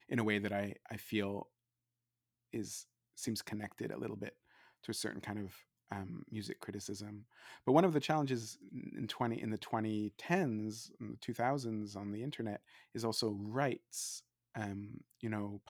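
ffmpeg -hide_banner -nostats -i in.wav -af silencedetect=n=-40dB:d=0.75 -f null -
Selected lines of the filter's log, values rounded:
silence_start: 1.42
silence_end: 2.54 | silence_duration: 1.11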